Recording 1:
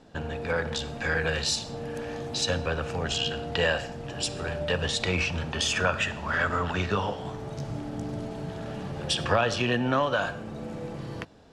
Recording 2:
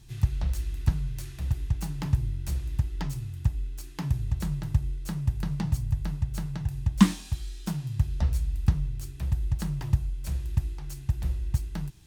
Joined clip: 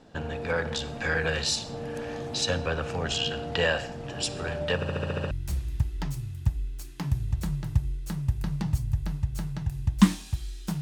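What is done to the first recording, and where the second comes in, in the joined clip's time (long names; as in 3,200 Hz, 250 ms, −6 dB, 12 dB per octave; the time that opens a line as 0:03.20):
recording 1
0:04.75: stutter in place 0.07 s, 8 plays
0:05.31: continue with recording 2 from 0:02.30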